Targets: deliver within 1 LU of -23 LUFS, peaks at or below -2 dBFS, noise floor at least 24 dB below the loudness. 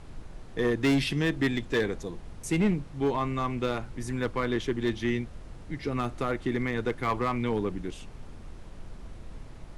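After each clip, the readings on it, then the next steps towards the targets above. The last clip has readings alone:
clipped 1.3%; flat tops at -19.5 dBFS; noise floor -45 dBFS; noise floor target -54 dBFS; loudness -29.5 LUFS; peak -19.5 dBFS; loudness target -23.0 LUFS
-> clip repair -19.5 dBFS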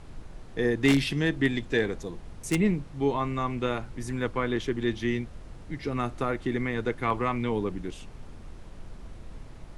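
clipped 0.0%; noise floor -45 dBFS; noise floor target -53 dBFS
-> noise print and reduce 8 dB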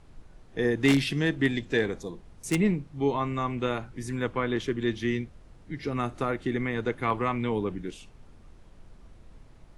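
noise floor -53 dBFS; loudness -28.5 LUFS; peak -10.5 dBFS; loudness target -23.0 LUFS
-> gain +5.5 dB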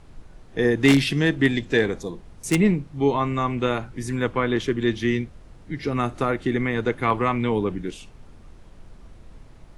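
loudness -23.0 LUFS; peak -5.0 dBFS; noise floor -47 dBFS

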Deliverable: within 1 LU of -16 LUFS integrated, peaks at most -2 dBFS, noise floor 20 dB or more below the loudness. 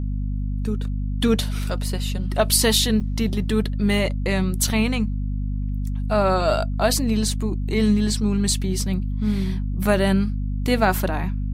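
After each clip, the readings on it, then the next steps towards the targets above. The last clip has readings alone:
dropouts 1; longest dropout 5.9 ms; hum 50 Hz; harmonics up to 250 Hz; hum level -22 dBFS; loudness -22.0 LUFS; peak -4.0 dBFS; loudness target -16.0 LUFS
-> interpolate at 3, 5.9 ms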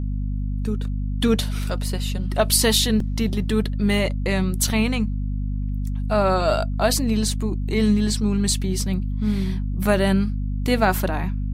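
dropouts 0; hum 50 Hz; harmonics up to 250 Hz; hum level -22 dBFS
-> notches 50/100/150/200/250 Hz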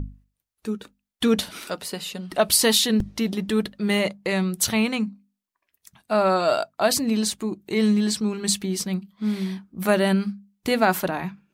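hum none; loudness -23.5 LUFS; peak -5.5 dBFS; loudness target -16.0 LUFS
-> gain +7.5 dB; limiter -2 dBFS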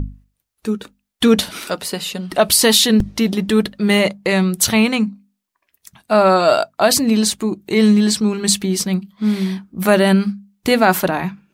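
loudness -16.5 LUFS; peak -2.0 dBFS; noise floor -75 dBFS

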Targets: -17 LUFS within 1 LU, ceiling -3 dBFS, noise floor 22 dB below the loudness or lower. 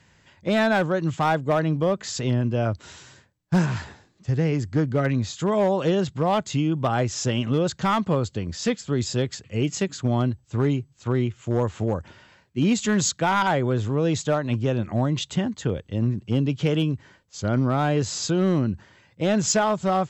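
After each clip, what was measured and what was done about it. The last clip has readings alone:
clipped 0.8%; flat tops at -14.0 dBFS; loudness -24.0 LUFS; peak -14.0 dBFS; loudness target -17.0 LUFS
-> clip repair -14 dBFS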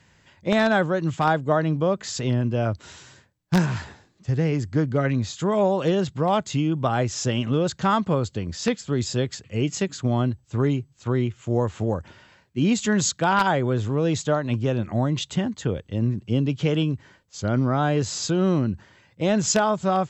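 clipped 0.0%; loudness -24.0 LUFS; peak -5.0 dBFS; loudness target -17.0 LUFS
-> gain +7 dB; limiter -3 dBFS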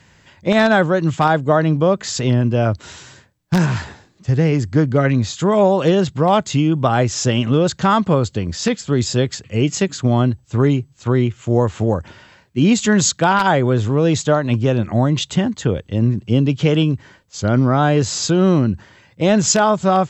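loudness -17.0 LUFS; peak -3.0 dBFS; noise floor -53 dBFS

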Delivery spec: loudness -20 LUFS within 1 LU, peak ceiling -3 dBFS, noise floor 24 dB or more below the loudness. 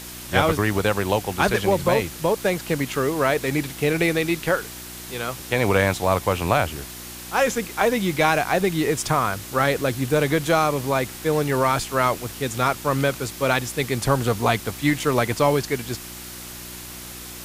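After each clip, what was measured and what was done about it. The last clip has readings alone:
hum 60 Hz; harmonics up to 360 Hz; hum level -43 dBFS; noise floor -37 dBFS; noise floor target -46 dBFS; loudness -22.0 LUFS; peak -4.0 dBFS; loudness target -20.0 LUFS
-> de-hum 60 Hz, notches 6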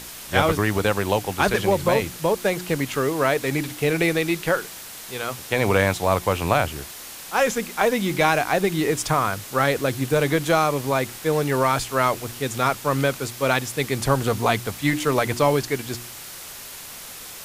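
hum none; noise floor -38 dBFS; noise floor target -46 dBFS
-> noise print and reduce 8 dB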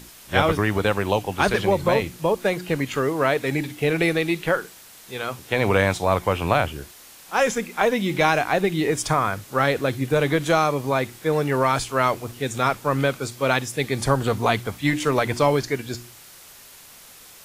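noise floor -46 dBFS; noise floor target -47 dBFS
-> noise print and reduce 6 dB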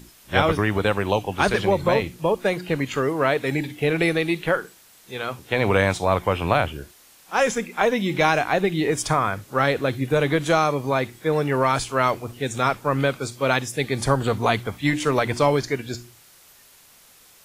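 noise floor -52 dBFS; loudness -22.5 LUFS; peak -4.5 dBFS; loudness target -20.0 LUFS
-> gain +2.5 dB; limiter -3 dBFS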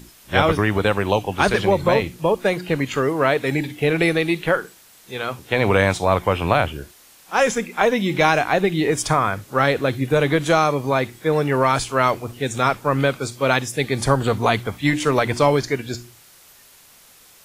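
loudness -20.0 LUFS; peak -3.0 dBFS; noise floor -50 dBFS

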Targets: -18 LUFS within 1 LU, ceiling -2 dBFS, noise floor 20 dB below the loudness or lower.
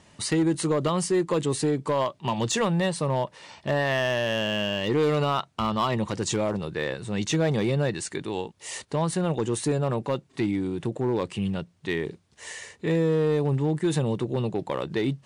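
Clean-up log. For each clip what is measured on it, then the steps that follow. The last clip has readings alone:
clipped 1.2%; flat tops at -17.5 dBFS; loudness -26.5 LUFS; peak -17.5 dBFS; loudness target -18.0 LUFS
-> clip repair -17.5 dBFS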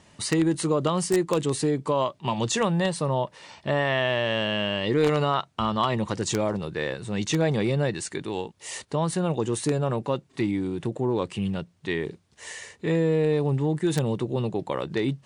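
clipped 0.0%; loudness -26.0 LUFS; peak -8.5 dBFS; loudness target -18.0 LUFS
-> gain +8 dB; limiter -2 dBFS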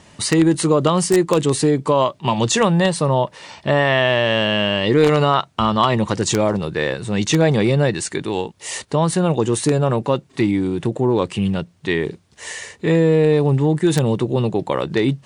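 loudness -18.0 LUFS; peak -2.0 dBFS; noise floor -52 dBFS

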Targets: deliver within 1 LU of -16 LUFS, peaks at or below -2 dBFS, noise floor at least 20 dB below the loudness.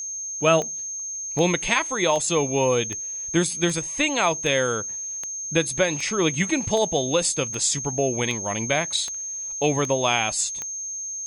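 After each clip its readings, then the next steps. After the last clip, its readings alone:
clicks 14; steady tone 6400 Hz; tone level -29 dBFS; loudness -23.0 LUFS; peak -5.0 dBFS; loudness target -16.0 LUFS
-> de-click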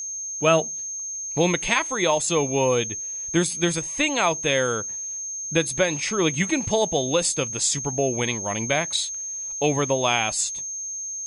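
clicks 0; steady tone 6400 Hz; tone level -29 dBFS
-> notch 6400 Hz, Q 30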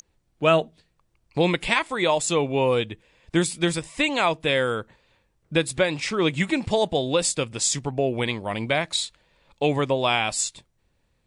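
steady tone none; loudness -23.5 LUFS; peak -4.5 dBFS; loudness target -16.0 LUFS
-> gain +7.5 dB; limiter -2 dBFS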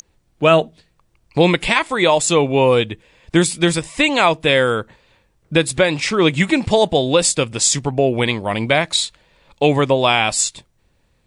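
loudness -16.5 LUFS; peak -2.0 dBFS; noise floor -63 dBFS

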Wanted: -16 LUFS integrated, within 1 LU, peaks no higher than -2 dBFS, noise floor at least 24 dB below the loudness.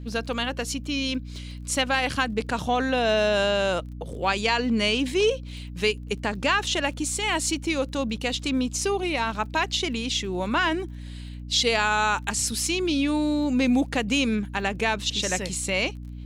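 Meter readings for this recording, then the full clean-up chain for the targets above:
ticks 22/s; hum 60 Hz; harmonics up to 300 Hz; hum level -35 dBFS; loudness -25.0 LUFS; peak -10.0 dBFS; loudness target -16.0 LUFS
-> de-click; de-hum 60 Hz, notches 5; gain +9 dB; limiter -2 dBFS

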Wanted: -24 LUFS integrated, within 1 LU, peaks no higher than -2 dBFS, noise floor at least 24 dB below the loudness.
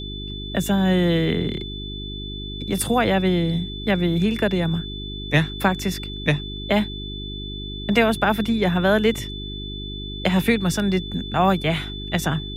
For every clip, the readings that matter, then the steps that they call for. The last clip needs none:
hum 50 Hz; harmonics up to 400 Hz; hum level -31 dBFS; steady tone 3500 Hz; tone level -34 dBFS; loudness -22.5 LUFS; peak -2.5 dBFS; loudness target -24.0 LUFS
-> de-hum 50 Hz, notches 8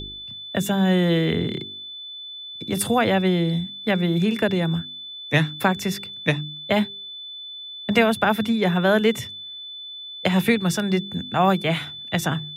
hum none; steady tone 3500 Hz; tone level -34 dBFS
-> notch 3500 Hz, Q 30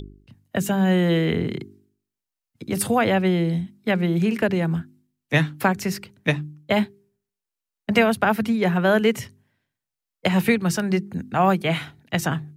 steady tone none; loudness -22.5 LUFS; peak -3.0 dBFS; loudness target -24.0 LUFS
-> gain -1.5 dB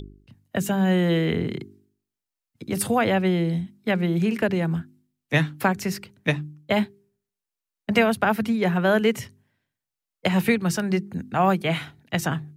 loudness -24.0 LUFS; peak -4.5 dBFS; noise floor -88 dBFS

